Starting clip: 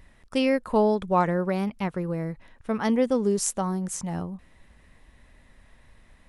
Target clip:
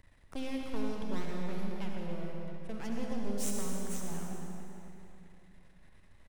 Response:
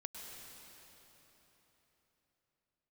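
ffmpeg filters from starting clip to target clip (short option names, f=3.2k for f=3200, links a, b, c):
-filter_complex "[0:a]aeval=exprs='max(val(0),0)':c=same,acrossover=split=290|3000[a][b][c];[b]acompressor=threshold=-40dB:ratio=6[d];[a][d][c]amix=inputs=3:normalize=0,asplit=2[e][f];[f]adelay=274,lowpass=f=2k:p=1,volume=-8dB,asplit=2[g][h];[h]adelay=274,lowpass=f=2k:p=1,volume=0.47,asplit=2[i][j];[j]adelay=274,lowpass=f=2k:p=1,volume=0.47,asplit=2[k][l];[l]adelay=274,lowpass=f=2k:p=1,volume=0.47,asplit=2[m][n];[n]adelay=274,lowpass=f=2k:p=1,volume=0.47[o];[e][g][i][k][m][o]amix=inputs=6:normalize=0[p];[1:a]atrim=start_sample=2205,asetrate=70560,aresample=44100[q];[p][q]afir=irnorm=-1:irlink=0,volume=3dB"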